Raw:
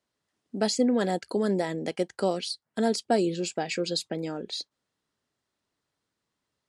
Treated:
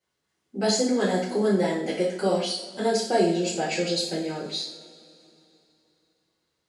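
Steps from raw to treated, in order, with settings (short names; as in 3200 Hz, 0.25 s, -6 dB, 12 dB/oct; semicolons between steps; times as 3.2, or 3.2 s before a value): two-slope reverb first 0.53 s, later 3.1 s, from -21 dB, DRR -10 dB; gain -6 dB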